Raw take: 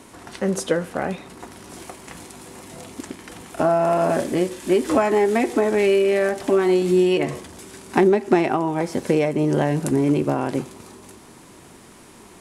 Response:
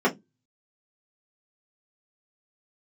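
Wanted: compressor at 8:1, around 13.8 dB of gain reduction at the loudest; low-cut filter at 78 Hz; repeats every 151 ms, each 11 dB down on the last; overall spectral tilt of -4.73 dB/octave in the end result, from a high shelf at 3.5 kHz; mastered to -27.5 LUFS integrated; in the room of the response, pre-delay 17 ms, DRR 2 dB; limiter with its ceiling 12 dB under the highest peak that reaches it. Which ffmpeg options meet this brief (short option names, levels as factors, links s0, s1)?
-filter_complex "[0:a]highpass=78,highshelf=f=3500:g=-5.5,acompressor=threshold=0.0501:ratio=8,alimiter=level_in=1.12:limit=0.0631:level=0:latency=1,volume=0.891,aecho=1:1:151|302|453:0.282|0.0789|0.0221,asplit=2[s0][s1];[1:a]atrim=start_sample=2205,adelay=17[s2];[s1][s2]afir=irnorm=-1:irlink=0,volume=0.119[s3];[s0][s3]amix=inputs=2:normalize=0,volume=1.26"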